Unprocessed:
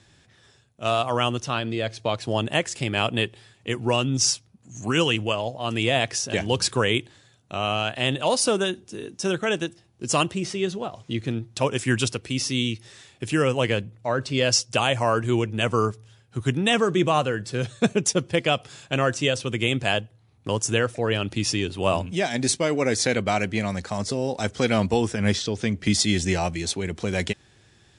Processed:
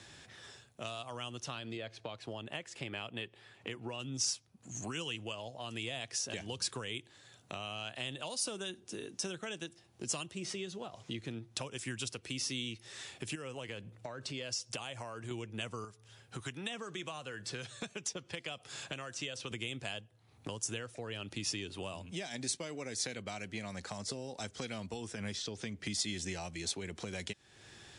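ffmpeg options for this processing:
-filter_complex "[0:a]asettb=1/sr,asplit=3[a][b][c];[a]atrim=end=1.774[d];[b]atrim=start=1.77:end=4,asetpts=PTS-STARTPTS,afade=t=in:d=0.004:c=qsin,afade=t=out:st=2.226:d=0.004:c=qsin,bass=f=250:g=-3,treble=f=4k:g=-11[e];[c]atrim=start=3.996[f];[d][e]acrossfade=d=0.004:c1=hsin:c2=qsin[g];[g][f]acrossfade=d=0.004:c1=qsin:c2=hsin,asettb=1/sr,asplit=3[h][i][j];[h]atrim=end=13.354[k];[i]atrim=start=13.35:end=15.31,asetpts=PTS-STARTPTS,afade=t=in:d=0.004:c=qsin,afade=t=out:st=1.956:d=0.004:c=qsin,acompressor=threshold=-33dB:ratio=2:attack=3.2:release=140:knee=1:detection=peak[l];[j]atrim=start=15.306[m];[k][l]acrossfade=d=0.004:c1=hsin:c2=qsin[n];[n][m]acrossfade=d=0.004:c1=qsin:c2=hsin,asettb=1/sr,asplit=3[o][p][q];[o]atrim=end=15.844[r];[p]atrim=start=15.84:end=19.51,asetpts=PTS-STARTPTS,afade=t=in:d=0.004:c=qsin,afade=t=out:st=3.666:d=0.004:c=qsin,acrossover=split=800|7500[s][t][u];[s]acompressor=threshold=-32dB:ratio=4[v];[t]acompressor=threshold=-30dB:ratio=4[w];[u]acompressor=threshold=-54dB:ratio=4[x];[v][w][x]amix=inputs=3:normalize=0[y];[q]atrim=start=19.506[z];[r][y]acrossfade=d=0.004:c1=hsin:c2=qsin[aa];[aa][z]acrossfade=d=0.004:c1=qsin:c2=hsin,acompressor=threshold=-44dB:ratio=2.5,lowshelf=f=250:g=-8.5,acrossover=split=220|3000[ab][ac][ad];[ac]acompressor=threshold=-46dB:ratio=6[ae];[ab][ae][ad]amix=inputs=3:normalize=0,volume=4.5dB"

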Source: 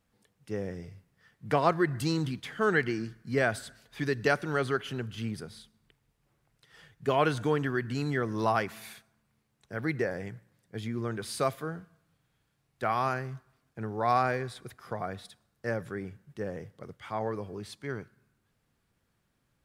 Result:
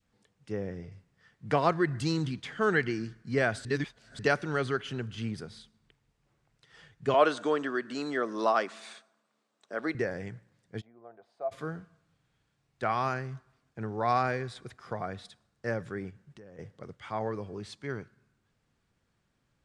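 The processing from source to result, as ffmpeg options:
-filter_complex "[0:a]asettb=1/sr,asplit=3[a][b][c];[a]atrim=end=0.524[d];[b]atrim=start=0.52:end=0.92,asetpts=PTS-STARTPTS,afade=t=in:d=0.004:c=qsin,afade=t=out:st=0.396:d=0.004:c=qsin,aemphasis=mode=reproduction:type=50kf[e];[c]atrim=start=0.916[f];[d][e]acrossfade=d=0.004:c1=hsin:c2=qsin[g];[g][f]acrossfade=d=0.004:c1=qsin:c2=hsin,asettb=1/sr,asplit=3[h][i][j];[h]atrim=end=7.144[k];[i]atrim=start=7.14:end=9.95,asetpts=PTS-STARTPTS,afade=t=in:d=0.004:c=qsin,afade=t=out:st=2.806:d=0.004:c=qsin,highpass=f=240:w=0.5412,highpass=f=240:w=1.3066,equalizer=f=610:t=q:w=4:g=8,equalizer=f=1.2k:t=q:w=4:g=6,equalizer=f=2.2k:t=q:w=4:g=-3,equalizer=f=3.7k:t=q:w=4:g=3,equalizer=f=8.4k:t=q:w=4:g=4,lowpass=f=9.5k:w=0.5412,lowpass=f=9.5k:w=1.3066[l];[j]atrim=start=9.946[m];[k][l]acrossfade=d=0.004:c1=hsin:c2=qsin[n];[n][m]acrossfade=d=0.004:c1=qsin:c2=hsin,asplit=3[o][p][q];[o]afade=t=out:st=10.8:d=0.02[r];[p]bandpass=f=690:t=q:w=7.7,afade=t=in:st=10.8:d=0.02,afade=t=out:st=11.51:d=0.02[s];[q]afade=t=in:st=11.51:d=0.02[t];[r][s][t]amix=inputs=3:normalize=0,asettb=1/sr,asplit=3[u][v][w];[u]atrim=end=16.104[x];[v]atrim=start=16.1:end=16.59,asetpts=PTS-STARTPTS,afade=t=in:d=0.004:c=qsin,afade=t=out:st=0.486:d=0.004:c=qsin,acompressor=threshold=-48dB:ratio=6:attack=3.2:release=140:knee=1:detection=peak[y];[w]atrim=start=16.586[z];[x][y]acrossfade=d=0.004:c1=hsin:c2=qsin[aa];[aa][z]acrossfade=d=0.004:c1=qsin:c2=hsin,asplit=3[ab][ac][ad];[ab]atrim=end=3.652[ae];[ac]atrim=start=3.648:end=4.192,asetpts=PTS-STARTPTS,areverse[af];[ad]atrim=start=4.188[ag];[ae][af]acrossfade=d=0.004:c1=hsin:c2=hsin[ah];[ah][ag]acrossfade=d=0.004:c1=hsin:c2=hsin,lowpass=f=8.4k:w=0.5412,lowpass=f=8.4k:w=1.3066,adynamicequalizer=threshold=0.0112:dfrequency=790:dqfactor=0.8:tfrequency=790:tqfactor=0.8:attack=5:release=100:ratio=0.375:range=2:mode=cutabove:tftype=bell"

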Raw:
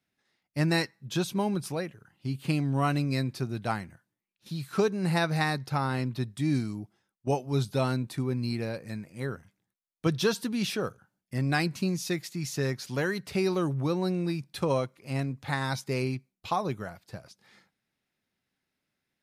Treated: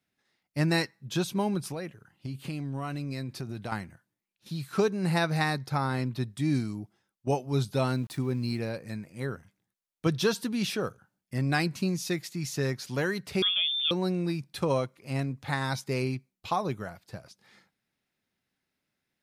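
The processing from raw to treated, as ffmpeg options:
-filter_complex "[0:a]asettb=1/sr,asplit=3[a][b][c];[a]atrim=end=1.674[d];[b]atrim=start=1.67:end=3.72,asetpts=PTS-STARTPTS,afade=t=in:d=0.004:c=qsin,afade=t=out:st=2.046:d=0.004:c=qsin,acompressor=threshold=-31dB:ratio=6:attack=3.2:release=140:knee=1:detection=peak[e];[c]atrim=start=3.716[f];[d][e]acrossfade=d=0.004:c1=hsin:c2=qsin[g];[g][f]acrossfade=d=0.004:c1=qsin:c2=hsin,asettb=1/sr,asplit=3[h][i][j];[h]atrim=end=5.604[k];[i]atrim=start=5.6:end=6.02,asetpts=PTS-STARTPTS,afade=t=in:d=0.004:c=qsin,afade=t=out:st=0.416:d=0.004:c=qsin,bandreject=f=2.8k:w=8.4[l];[j]atrim=start=6.016[m];[k][l]acrossfade=d=0.004:c1=hsin:c2=qsin[n];[n][m]acrossfade=d=0.004:c1=qsin:c2=hsin,asettb=1/sr,asplit=3[o][p][q];[o]atrim=end=7.944[r];[p]atrim=start=7.94:end=8.59,asetpts=PTS-STARTPTS,afade=t=in:d=0.004:c=qsin,afade=t=out:st=0.646:d=0.004:c=qsin,aeval=exprs='val(0)*gte(abs(val(0)),0.00355)':c=same[s];[q]atrim=start=8.586[t];[r][s]acrossfade=d=0.004:c1=hsin:c2=qsin[u];[u][t]acrossfade=d=0.004:c1=qsin:c2=hsin,asettb=1/sr,asplit=3[v][w][x];[v]atrim=end=13.424[y];[w]atrim=start=13.42:end=13.91,asetpts=PTS-STARTPTS,afade=t=in:d=0.004:c=qsin,afade=t=out:st=0.486:d=0.004:c=qsin,lowpass=f=3.1k:t=q:w=0.5098,lowpass=f=3.1k:t=q:w=0.6013,lowpass=f=3.1k:t=q:w=0.9,lowpass=f=3.1k:t=q:w=2.563,afreqshift=-3700[z];[x]atrim=start=13.906[aa];[y][z]acrossfade=d=0.004:c1=hsin:c2=qsin[ab];[ab][aa]acrossfade=d=0.004:c1=qsin:c2=hsin"

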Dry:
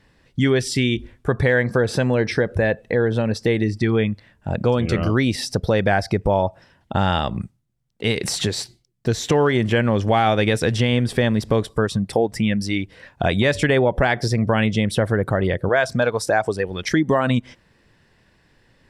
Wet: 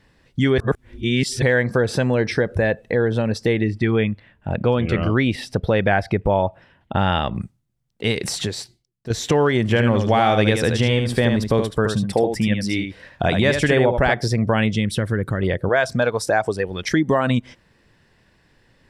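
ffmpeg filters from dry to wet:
-filter_complex "[0:a]asettb=1/sr,asplit=3[a][b][c];[a]atrim=end=3.534[d];[b]atrim=start=3.53:end=7.35,asetpts=PTS-STARTPTS,afade=t=in:d=0.004:c=qsin,afade=t=out:st=3.816:d=0.004:c=qsin,highshelf=f=4k:t=q:w=1.5:g=-8.5[e];[c]atrim=start=7.346[f];[d][e]acrossfade=d=0.004:c1=hsin:c2=qsin[g];[g][f]acrossfade=d=0.004:c1=qsin:c2=hsin,asettb=1/sr,asplit=3[h][i][j];[h]atrim=end=9.624[k];[i]atrim=start=9.62:end=14.14,asetpts=PTS-STARTPTS,afade=t=in:d=0.004:c=qsin,afade=t=out:st=4.516:d=0.004:c=qsin,aecho=1:1:76:0.501,atrim=end_sample=199332[l];[j]atrim=start=14.136[m];[k][l]acrossfade=d=0.004:c1=hsin:c2=qsin[n];[n][m]acrossfade=d=0.004:c1=qsin:c2=hsin,asettb=1/sr,asplit=3[o][p][q];[o]atrim=end=14.754[r];[p]atrim=start=14.75:end=15.43,asetpts=PTS-STARTPTS,afade=t=in:d=0.004:c=qsin,afade=t=out:st=0.676:d=0.004:c=qsin,equalizer=f=730:w=1.3:g=-12[s];[q]atrim=start=15.426[t];[r][s]acrossfade=d=0.004:c1=hsin:c2=qsin[u];[u][t]acrossfade=d=0.004:c1=qsin:c2=hsin,asplit=4[v][w][x][y];[v]atrim=end=0.582[z];[w]atrim=start=0.578:end=1.422,asetpts=PTS-STARTPTS,areverse[aa];[x]atrim=start=1.418:end=9.1,asetpts=PTS-STARTPTS,afade=t=out:st=6.662:d=1.02:silence=0.266073[ab];[y]atrim=start=9.1,asetpts=PTS-STARTPTS,afade=t=in:d=0.004:c=hsin:silence=0.266073[ac];[z][aa]acrossfade=d=0.004:c1=hsin:c2=hsin[ad];[ab][ac]concat=n=2:v=0:a=1[ae];[ad][ae]acrossfade=d=0.004:c1=hsin:c2=hsin"

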